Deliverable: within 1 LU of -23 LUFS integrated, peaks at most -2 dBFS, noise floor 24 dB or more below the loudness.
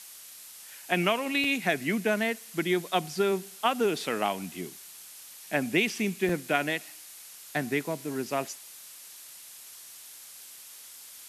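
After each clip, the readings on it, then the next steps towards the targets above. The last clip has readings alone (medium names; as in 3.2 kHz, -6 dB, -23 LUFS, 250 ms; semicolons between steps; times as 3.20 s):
dropouts 2; longest dropout 3.1 ms; noise floor -48 dBFS; noise floor target -53 dBFS; loudness -29.0 LUFS; peak level -10.5 dBFS; loudness target -23.0 LUFS
-> interpolate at 1.44/6.29 s, 3.1 ms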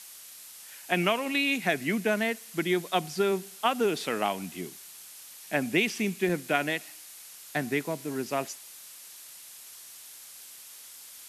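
dropouts 0; noise floor -48 dBFS; noise floor target -53 dBFS
-> noise reduction 6 dB, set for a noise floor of -48 dBFS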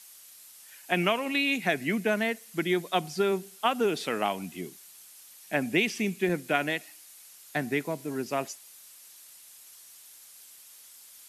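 noise floor -52 dBFS; noise floor target -53 dBFS
-> noise reduction 6 dB, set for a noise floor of -52 dBFS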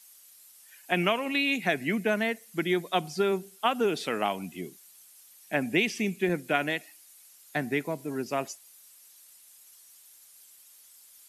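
noise floor -55 dBFS; loudness -29.0 LUFS; peak level -11.0 dBFS; loudness target -23.0 LUFS
-> trim +6 dB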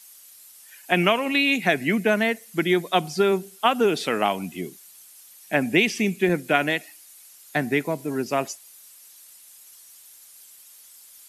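loudness -23.0 LUFS; peak level -5.0 dBFS; noise floor -49 dBFS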